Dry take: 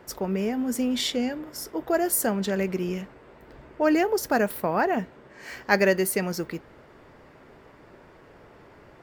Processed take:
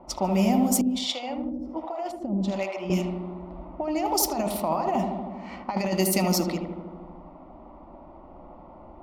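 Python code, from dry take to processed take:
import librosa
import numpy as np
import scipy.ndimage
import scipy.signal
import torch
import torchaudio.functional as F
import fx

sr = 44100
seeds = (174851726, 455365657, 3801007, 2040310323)

y = fx.peak_eq(x, sr, hz=270.0, db=-6.0, octaves=2.3)
y = fx.fixed_phaser(y, sr, hz=440.0, stages=6)
y = fx.over_compress(y, sr, threshold_db=-33.0, ratio=-1.0)
y = fx.echo_filtered(y, sr, ms=78, feedback_pct=77, hz=1600.0, wet_db=-5.0)
y = fx.harmonic_tremolo(y, sr, hz=1.3, depth_pct=100, crossover_hz=500.0, at=(0.81, 2.9))
y = fx.env_lowpass(y, sr, base_hz=810.0, full_db=-27.5)
y = y * 10.0 ** (8.0 / 20.0)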